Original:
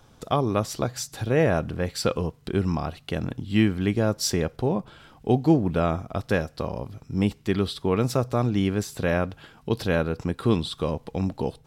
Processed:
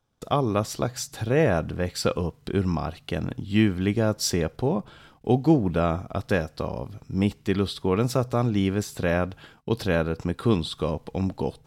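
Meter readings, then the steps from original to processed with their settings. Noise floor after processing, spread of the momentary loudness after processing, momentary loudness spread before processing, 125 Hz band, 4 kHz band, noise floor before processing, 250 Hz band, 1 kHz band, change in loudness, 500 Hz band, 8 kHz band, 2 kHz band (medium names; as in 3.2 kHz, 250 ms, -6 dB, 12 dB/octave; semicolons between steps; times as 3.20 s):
-58 dBFS, 9 LU, 9 LU, 0.0 dB, 0.0 dB, -55 dBFS, 0.0 dB, 0.0 dB, 0.0 dB, 0.0 dB, 0.0 dB, 0.0 dB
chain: gate -50 dBFS, range -20 dB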